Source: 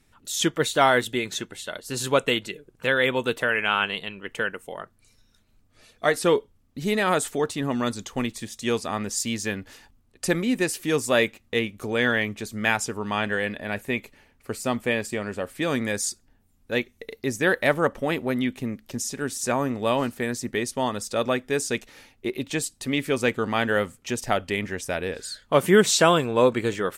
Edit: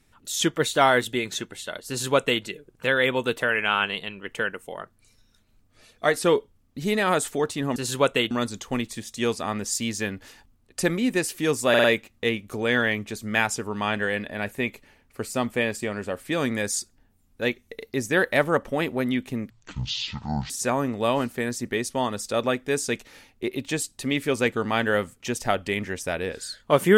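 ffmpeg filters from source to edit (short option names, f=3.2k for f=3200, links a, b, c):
-filter_complex "[0:a]asplit=8[a][b][c][d][e][f][g][h];[a]atrim=end=7.762[i];[b]atrim=start=1.878:end=2.432[j];[c]atrim=start=7.758:end=11.192[k];[d]atrim=start=11.138:end=11.192[l];[e]atrim=start=11.138:end=11.192[m];[f]atrim=start=11.138:end=18.804[n];[g]atrim=start=18.8:end=19.32,asetpts=PTS-STARTPTS,asetrate=22932,aresample=44100[o];[h]atrim=start=19.316[p];[i][j]acrossfade=d=0.004:c1=hsin:c2=hsin[q];[q][k]acrossfade=d=0.004:c1=hsin:c2=hsin[r];[r][l]acrossfade=d=0.004:c1=hsin:c2=hsin[s];[s][m]acrossfade=d=0.004:c1=hsin:c2=hsin[t];[t][n]acrossfade=d=0.004:c1=hsin:c2=hsin[u];[u][o]acrossfade=d=0.004:c1=hsin:c2=hsin[v];[v][p]acrossfade=d=0.004:c1=hsin:c2=hsin"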